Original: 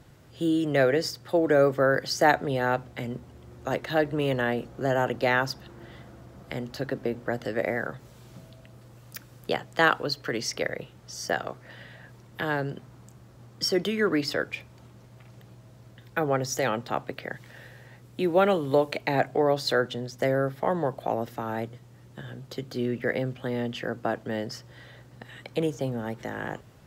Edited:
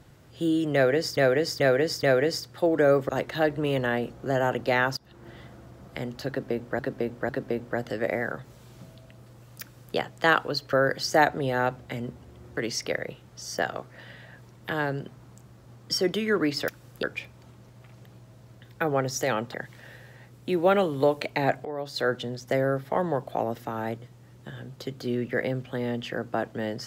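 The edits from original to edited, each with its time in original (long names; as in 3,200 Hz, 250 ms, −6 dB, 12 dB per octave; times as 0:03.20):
0:00.74–0:01.17: repeat, 4 plays
0:01.80–0:03.64: move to 0:10.28
0:05.52–0:05.83: fade in, from −20 dB
0:06.84–0:07.34: repeat, 3 plays
0:09.16–0:09.51: duplicate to 0:14.39
0:16.90–0:17.25: remove
0:19.36–0:19.83: fade in quadratic, from −12 dB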